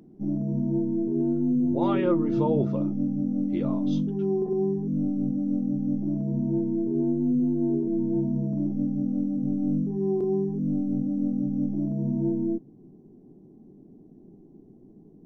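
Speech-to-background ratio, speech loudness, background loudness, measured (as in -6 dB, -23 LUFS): -4.0 dB, -30.5 LUFS, -26.5 LUFS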